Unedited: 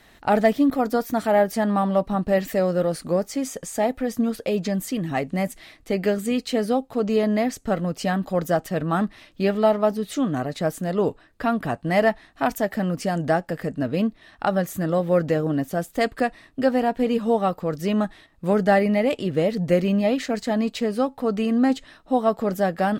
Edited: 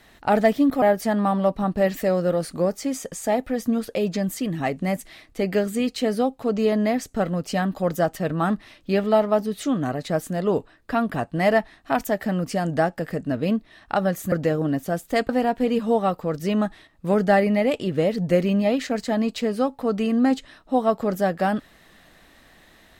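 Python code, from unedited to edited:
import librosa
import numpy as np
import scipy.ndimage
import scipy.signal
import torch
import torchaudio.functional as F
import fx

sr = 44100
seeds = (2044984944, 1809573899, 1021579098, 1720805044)

y = fx.edit(x, sr, fx.cut(start_s=0.82, length_s=0.51),
    fx.cut(start_s=14.83, length_s=0.34),
    fx.cut(start_s=16.14, length_s=0.54), tone=tone)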